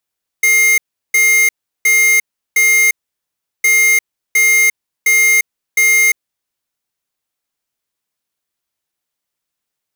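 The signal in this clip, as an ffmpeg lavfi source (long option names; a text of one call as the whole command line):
ffmpeg -f lavfi -i "aevalsrc='0.299*(2*lt(mod(2120*t,1),0.5)-1)*clip(min(mod(mod(t,3.21),0.71),0.35-mod(mod(t,3.21),0.71))/0.005,0,1)*lt(mod(t,3.21),2.84)':duration=6.42:sample_rate=44100" out.wav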